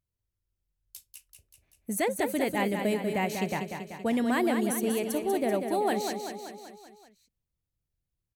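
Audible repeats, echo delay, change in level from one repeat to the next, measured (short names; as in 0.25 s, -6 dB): 6, 0.192 s, -4.5 dB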